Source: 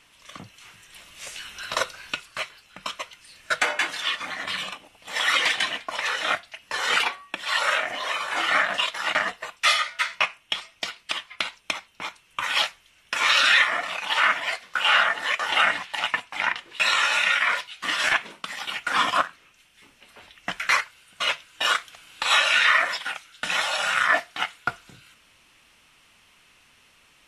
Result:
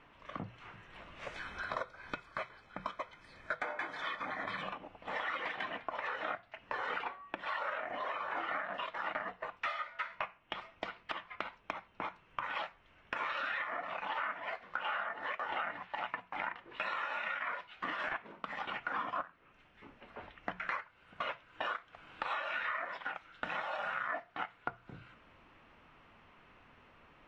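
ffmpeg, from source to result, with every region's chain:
-filter_complex "[0:a]asettb=1/sr,asplit=3[a][b][c];[a]atrim=end=1.344[d];[b]atrim=start=1.34:end=4.62,asetpts=PTS-STARTPTS,afade=t=in:d=0.004:c=qsin,afade=t=out:st=3.276:d=0.004:c=qsin,asuperstop=centerf=2800:order=12:qfactor=6.9,highshelf=f=6.3k:g=10.5[e];[c]atrim=start=4.616[f];[d][e]acrossfade=d=0.004:c1=hsin:c2=qsin[g];[g][f]acrossfade=d=0.004:c1=qsin:c2=hsin,lowpass=1.3k,bandreject=f=60:t=h:w=6,bandreject=f=120:t=h:w=6,bandreject=f=180:t=h:w=6,acompressor=threshold=-40dB:ratio=5,volume=3.5dB"

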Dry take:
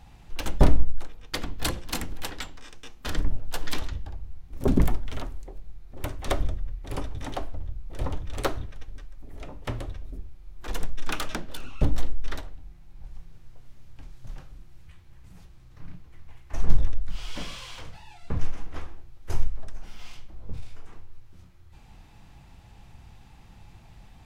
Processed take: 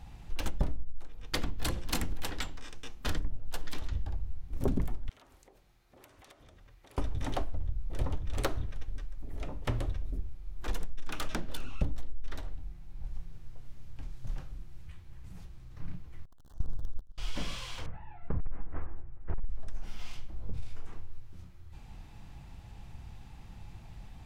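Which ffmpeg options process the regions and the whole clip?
-filter_complex "[0:a]asettb=1/sr,asplit=3[a][b][c];[a]atrim=end=5.094[d];[b]atrim=start=5.09:end=6.98,asetpts=PTS-STARTPTS,afade=t=in:d=0.004:c=qsin,afade=t=out:st=1.886:d=0.004:c=qsin,highpass=f=820:p=1,acompressor=threshold=-53dB:ratio=8:attack=3.2:release=140:knee=1:detection=peak[e];[c]atrim=start=6.976[f];[d][e]acrossfade=d=0.004:c1=hsin:c2=qsin[g];[g][f]acrossfade=d=0.004:c1=qsin:c2=hsin,asettb=1/sr,asplit=3[h][i][j];[h]atrim=end=16.254[k];[i]atrim=start=16.25:end=17.18,asetpts=PTS-STARTPTS,afade=t=in:d=0.004:c=qsin,afade=t=out:st=0.926:d=0.004:c=qsin,aeval=exprs='val(0)+0.5*0.0944*sgn(val(0))':c=same,agate=range=-30dB:threshold=-15dB:ratio=16:release=100:detection=peak,asuperstop=centerf=2300:order=4:qfactor=1.3[l];[j]atrim=start=17.176[m];[k][l]acrossfade=d=0.004:c1=hsin:c2=qsin[n];[n][m]acrossfade=d=0.004:c1=qsin:c2=hsin,asettb=1/sr,asplit=3[o][p][q];[o]atrim=end=17.864[r];[p]atrim=start=17.86:end=19.5,asetpts=PTS-STARTPTS,afade=t=in:d=0.004:c=qsin,afade=t=out:st=1.636:d=0.004:c=qsin,lowpass=f=1.9k:w=0.5412,lowpass=f=1.9k:w=1.3066,asoftclip=type=hard:threshold=-19.5dB[s];[q]atrim=start=19.496[t];[r][s]acrossfade=d=0.004:c1=hsin:c2=qsin[u];[u][t]acrossfade=d=0.004:c1=qsin:c2=hsin,lowshelf=f=210:g=4.5,acompressor=threshold=-23dB:ratio=10,volume=-1.5dB"

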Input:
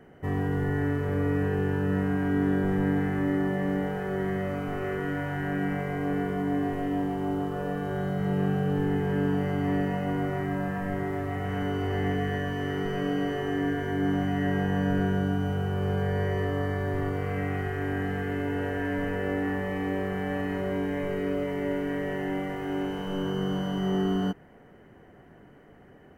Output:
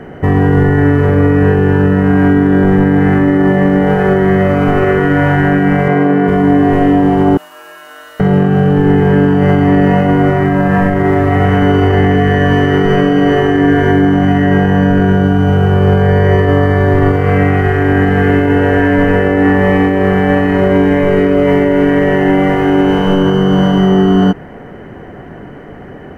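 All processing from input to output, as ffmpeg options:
-filter_complex "[0:a]asettb=1/sr,asplit=3[a][b][c];[a]atrim=end=5.884[d];[b]atrim=start=5.88:end=6.28,asetpts=PTS-STARTPTS,afade=t=in:d=0.004:c=qsin,afade=t=out:st=0.396:d=0.004:c=qsin,highpass=f=140:w=0.5412,highpass=f=140:w=1.3066,aemphasis=mode=reproduction:type=cd[e];[c]atrim=start=6.276[f];[d][e]acrossfade=d=0.004:c1=hsin:c2=qsin[g];[g][f]acrossfade=d=0.004:c1=qsin:c2=hsin,asettb=1/sr,asplit=3[h][i][j];[h]atrim=end=7.374[k];[i]atrim=start=7.37:end=8.2,asetpts=PTS-STARTPTS,afade=t=in:d=0.004:c=qsin,afade=t=out:st=0.826:d=0.004:c=qsin,highpass=800,aderivative,afreqshift=-110[l];[j]atrim=start=8.196[m];[k][l]acrossfade=d=0.004:c1=hsin:c2=qsin[n];[n][m]acrossfade=d=0.004:c1=qsin:c2=hsin,lowpass=f=3k:p=1,alimiter=level_in=23dB:limit=-1dB:release=50:level=0:latency=1,volume=-1dB"

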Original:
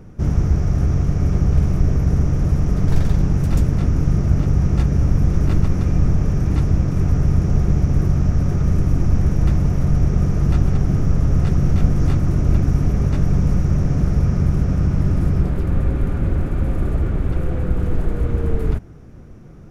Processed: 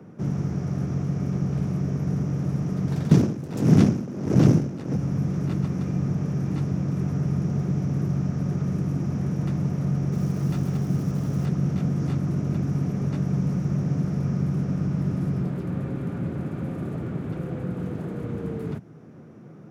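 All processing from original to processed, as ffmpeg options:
-filter_complex "[0:a]asettb=1/sr,asplit=3[a][b][c];[a]atrim=end=3.114[d];[b]atrim=start=3.11:end=4.96,asetpts=PTS-STARTPTS,afade=t=in:d=0.004:c=qsin,afade=t=out:st=1.846:d=0.004:c=qsin,aeval=exprs='0.794*sin(PI/2*5.01*val(0)/0.794)':c=same,aeval=exprs='val(0)*pow(10,-21*(0.5-0.5*cos(2*PI*1.5*n/s))/20)':c=same[e];[c]atrim=start=4.956[f];[d][e]acrossfade=d=0.004:c1=hsin:c2=qsin[g];[g][f]acrossfade=d=0.004:c1=qsin:c2=hsin,asettb=1/sr,asplit=3[h][i][j];[h]atrim=end=10.124[k];[i]atrim=start=10.12:end=11.46,asetpts=PTS-STARTPTS,afade=t=in:d=0.004:c=qsin,afade=t=out:st=1.336:d=0.004:c=qsin,highshelf=f=5.3k:g=7,acrusher=bits=8:dc=4:mix=0:aa=0.000001[l];[j]atrim=start=11.456[m];[k][l]acrossfade=d=0.004:c1=hsin:c2=qsin[n];[n][m]acrossfade=d=0.004:c1=qsin:c2=hsin,highpass=f=140:w=0.5412,highpass=f=140:w=1.3066,highshelf=f=2.9k:g=-9,acrossover=split=210|3000[o][p][q];[p]acompressor=threshold=-45dB:ratio=1.5[r];[o][r][q]amix=inputs=3:normalize=0"

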